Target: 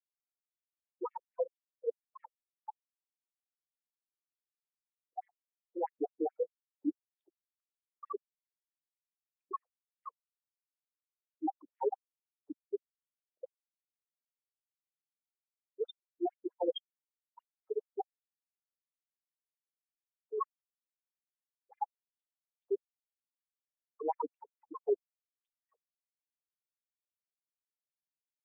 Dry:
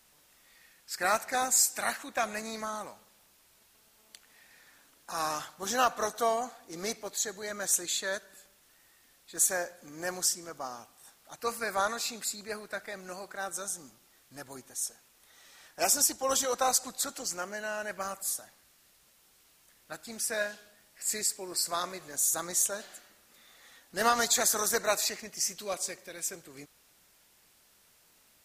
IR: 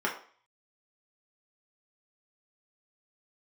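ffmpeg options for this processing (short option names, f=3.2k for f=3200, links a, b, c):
-af "afftfilt=real='re*gte(hypot(re,im),0.178)':imag='im*gte(hypot(re,im),0.178)':win_size=1024:overlap=0.75,areverse,acompressor=threshold=-41dB:ratio=5,areverse,asetrate=29433,aresample=44100,atempo=1.49831,afftfilt=real='re*between(b*sr/1024,340*pow(2600/340,0.5+0.5*sin(2*PI*4.6*pts/sr))/1.41,340*pow(2600/340,0.5+0.5*sin(2*PI*4.6*pts/sr))*1.41)':imag='im*between(b*sr/1024,340*pow(2600/340,0.5+0.5*sin(2*PI*4.6*pts/sr))/1.41,340*pow(2600/340,0.5+0.5*sin(2*PI*4.6*pts/sr))*1.41)':win_size=1024:overlap=0.75,volume=13dB"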